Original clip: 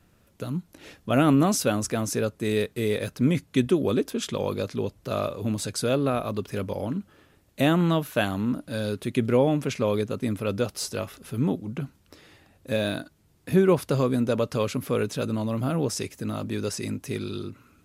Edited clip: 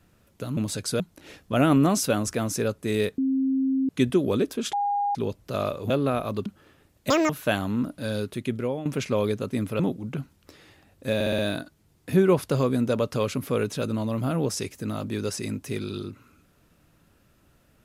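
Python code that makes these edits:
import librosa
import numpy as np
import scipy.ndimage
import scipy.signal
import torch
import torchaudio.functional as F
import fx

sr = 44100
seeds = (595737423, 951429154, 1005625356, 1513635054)

y = fx.edit(x, sr, fx.bleep(start_s=2.75, length_s=0.71, hz=266.0, db=-20.5),
    fx.bleep(start_s=4.3, length_s=0.42, hz=813.0, db=-22.0),
    fx.move(start_s=5.47, length_s=0.43, to_s=0.57),
    fx.cut(start_s=6.46, length_s=0.52),
    fx.speed_span(start_s=7.62, length_s=0.37, speed=1.9),
    fx.fade_out_to(start_s=8.87, length_s=0.68, floor_db=-13.5),
    fx.cut(start_s=10.49, length_s=0.94),
    fx.stutter(start_s=12.78, slice_s=0.06, count=5), tone=tone)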